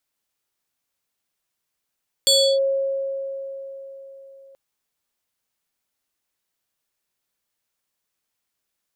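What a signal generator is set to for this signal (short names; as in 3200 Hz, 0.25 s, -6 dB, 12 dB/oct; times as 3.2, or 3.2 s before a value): FM tone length 2.28 s, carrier 544 Hz, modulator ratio 7.23, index 2, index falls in 0.32 s linear, decay 4.11 s, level -12 dB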